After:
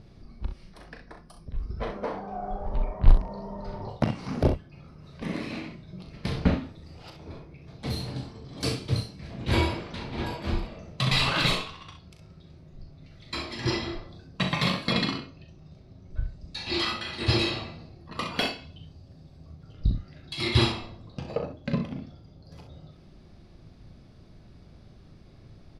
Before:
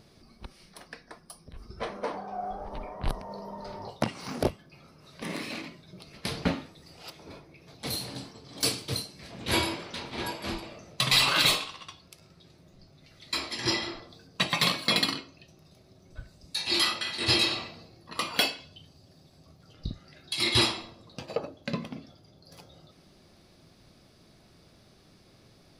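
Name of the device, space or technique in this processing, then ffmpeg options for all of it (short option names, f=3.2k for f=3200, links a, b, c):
slapback doubling: -filter_complex "[0:a]aemphasis=mode=reproduction:type=bsi,asplit=3[a][b][c];[b]adelay=38,volume=-7.5dB[d];[c]adelay=65,volume=-9dB[e];[a][d][e]amix=inputs=3:normalize=0,asettb=1/sr,asplit=3[f][g][h];[f]atrim=end=14.934[i];[g]atrim=start=14.93:end=16.89,asetpts=PTS-STARTPTS,afade=t=in:d=0.004:c=qsin,afade=t=out:st=1.956:d=0.004:c=qsin,lowpass=7.6k[j];[h]atrim=start=16.886[k];[i][j]acrossfade=d=0.004:c1=hsin:c2=qsin[l];[l][k]acrossfade=d=0.004:c1=qsin:c2=hsin,volume=-1dB"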